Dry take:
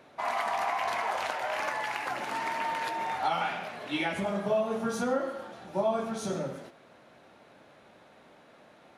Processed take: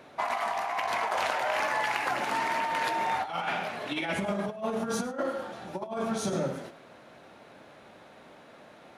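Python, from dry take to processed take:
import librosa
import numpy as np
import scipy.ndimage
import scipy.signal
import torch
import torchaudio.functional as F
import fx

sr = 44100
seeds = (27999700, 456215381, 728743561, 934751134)

p1 = fx.over_compress(x, sr, threshold_db=-32.0, ratio=-0.5)
p2 = p1 + fx.echo_single(p1, sr, ms=105, db=-17.5, dry=0)
y = p2 * 10.0 ** (2.5 / 20.0)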